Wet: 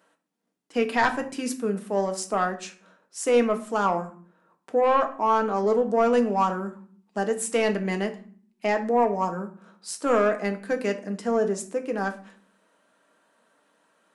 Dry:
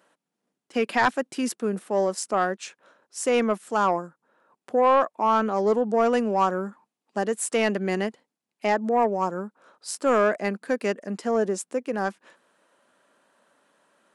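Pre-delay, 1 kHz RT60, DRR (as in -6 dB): 4 ms, 0.45 s, 5.0 dB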